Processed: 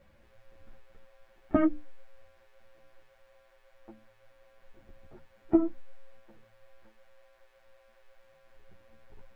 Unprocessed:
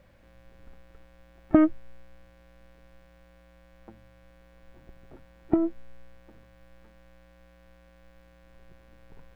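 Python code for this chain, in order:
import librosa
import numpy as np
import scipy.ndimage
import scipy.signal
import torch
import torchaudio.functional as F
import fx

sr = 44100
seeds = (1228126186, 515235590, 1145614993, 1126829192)

y = fx.hum_notches(x, sr, base_hz=60, count=5)
y = fx.ensemble(y, sr)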